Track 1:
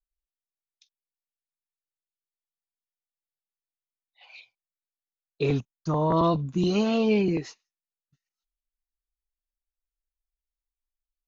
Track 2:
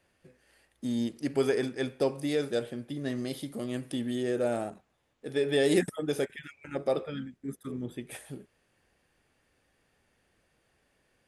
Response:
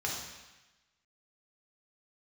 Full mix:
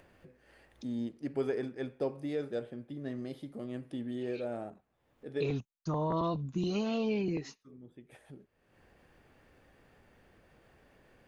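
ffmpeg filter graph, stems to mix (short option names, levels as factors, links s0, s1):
-filter_complex "[0:a]acompressor=threshold=0.0631:ratio=3,volume=0.531,asplit=2[s0][s1];[1:a]lowpass=f=1500:p=1,volume=0.531,asplit=3[s2][s3][s4];[s2]atrim=end=5.51,asetpts=PTS-STARTPTS,afade=t=out:st=5.506:d=0.004:c=hsin[s5];[s3]atrim=start=5.51:end=7.09,asetpts=PTS-STARTPTS,volume=0[s6];[s4]atrim=start=7.09,asetpts=PTS-STARTPTS,afade=t=in:d=0.004:c=hsin[s7];[s5][s6][s7]concat=n=3:v=0:a=1[s8];[s1]apad=whole_len=497384[s9];[s8][s9]sidechaincompress=threshold=0.00282:ratio=4:attack=16:release=904[s10];[s0][s10]amix=inputs=2:normalize=0,acompressor=mode=upward:threshold=0.00398:ratio=2.5"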